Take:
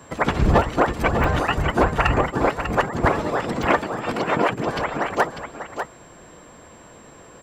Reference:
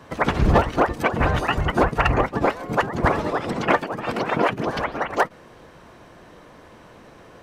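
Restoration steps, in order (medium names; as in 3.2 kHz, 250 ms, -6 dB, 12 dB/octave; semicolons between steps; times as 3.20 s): band-stop 7.5 kHz, Q 30; interpolate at 1.24/3.63 s, 1.9 ms; inverse comb 596 ms -8.5 dB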